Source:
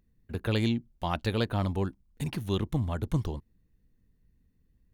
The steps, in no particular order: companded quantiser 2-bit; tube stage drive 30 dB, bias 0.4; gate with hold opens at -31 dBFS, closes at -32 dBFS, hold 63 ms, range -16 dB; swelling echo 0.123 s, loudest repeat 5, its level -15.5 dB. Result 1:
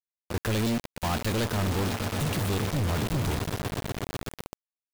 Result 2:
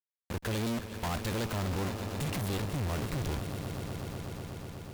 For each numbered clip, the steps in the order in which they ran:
tube stage > swelling echo > companded quantiser > gate with hold; companded quantiser > gate with hold > swelling echo > tube stage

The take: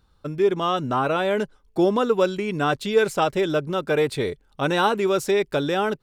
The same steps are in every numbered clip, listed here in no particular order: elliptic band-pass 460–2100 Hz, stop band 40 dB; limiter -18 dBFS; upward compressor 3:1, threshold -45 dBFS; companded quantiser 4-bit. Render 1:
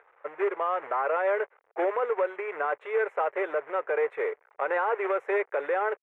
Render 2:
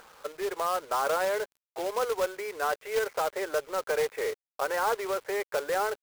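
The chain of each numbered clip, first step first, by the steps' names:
upward compressor > companded quantiser > elliptic band-pass > limiter; limiter > elliptic band-pass > upward compressor > companded quantiser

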